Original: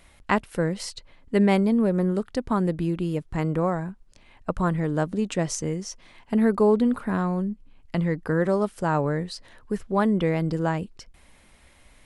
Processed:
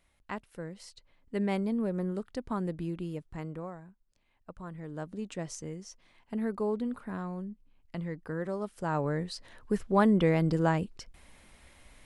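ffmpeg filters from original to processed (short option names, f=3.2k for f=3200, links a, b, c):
-af "volume=8.5dB,afade=t=in:st=0.82:d=0.88:silence=0.473151,afade=t=out:st=2.99:d=0.82:silence=0.316228,afade=t=in:st=4.66:d=0.56:silence=0.421697,afade=t=in:st=8.59:d=1.13:silence=0.298538"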